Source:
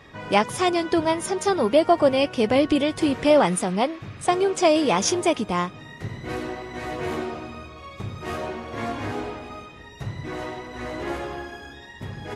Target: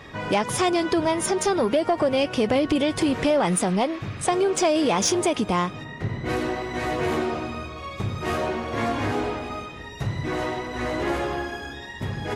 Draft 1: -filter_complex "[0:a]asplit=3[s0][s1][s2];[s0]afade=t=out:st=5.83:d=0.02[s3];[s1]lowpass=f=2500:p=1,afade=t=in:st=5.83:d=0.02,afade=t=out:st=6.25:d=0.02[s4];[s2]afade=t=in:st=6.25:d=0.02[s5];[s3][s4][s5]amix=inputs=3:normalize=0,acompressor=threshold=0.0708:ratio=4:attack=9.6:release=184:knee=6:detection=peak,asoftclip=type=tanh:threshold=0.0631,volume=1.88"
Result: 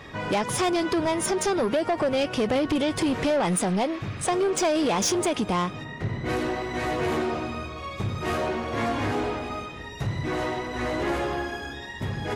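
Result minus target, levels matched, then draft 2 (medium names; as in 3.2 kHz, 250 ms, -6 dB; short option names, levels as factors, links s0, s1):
saturation: distortion +9 dB
-filter_complex "[0:a]asplit=3[s0][s1][s2];[s0]afade=t=out:st=5.83:d=0.02[s3];[s1]lowpass=f=2500:p=1,afade=t=in:st=5.83:d=0.02,afade=t=out:st=6.25:d=0.02[s4];[s2]afade=t=in:st=6.25:d=0.02[s5];[s3][s4][s5]amix=inputs=3:normalize=0,acompressor=threshold=0.0708:ratio=4:attack=9.6:release=184:knee=6:detection=peak,asoftclip=type=tanh:threshold=0.141,volume=1.88"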